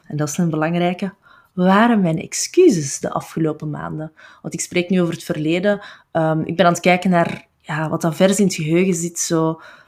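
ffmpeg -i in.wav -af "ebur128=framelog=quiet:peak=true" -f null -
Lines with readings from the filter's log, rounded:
Integrated loudness:
  I:         -18.3 LUFS
  Threshold: -28.7 LUFS
Loudness range:
  LRA:         4.0 LU
  Threshold: -38.7 LUFS
  LRA low:   -21.6 LUFS
  LRA high:  -17.6 LUFS
True peak:
  Peak:       -1.5 dBFS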